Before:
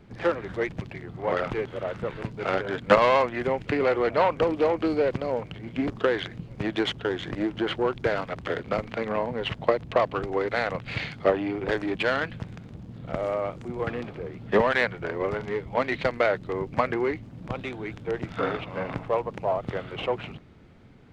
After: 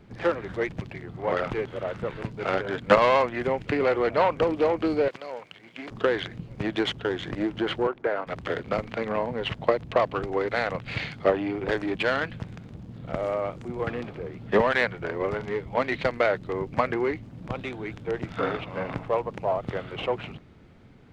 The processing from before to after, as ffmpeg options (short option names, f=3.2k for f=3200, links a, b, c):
-filter_complex "[0:a]asettb=1/sr,asplit=3[a][b][c];[a]atrim=end=5.084[d];[b]atrim=start=5.08:end=5.91,asetpts=PTS-STARTPTS,afade=t=in:d=0.004:c=qsin,afade=t=out:st=0.826:d=0.004:c=qsin,highpass=f=1.4k:p=1[e];[c]atrim=start=5.906[f];[d][e]acrossfade=d=0.004:c1=hsin:c2=qsin[g];[g][f]acrossfade=d=0.004:c1=qsin:c2=hsin,asettb=1/sr,asplit=3[h][i][j];[h]atrim=end=7.874[k];[i]atrim=start=7.87:end=8.27,asetpts=PTS-STARTPTS,afade=t=in:d=0.004:c=qsin,afade=t=out:st=0.396:d=0.004:c=qsin,acrossover=split=270 2100:gain=0.126 1 0.141[l][m][n];[l][m][n]amix=inputs=3:normalize=0[o];[j]atrim=start=8.266[p];[k][o]acrossfade=d=0.004:c1=hsin:c2=qsin[q];[q][p]acrossfade=d=0.004:c1=qsin:c2=hsin"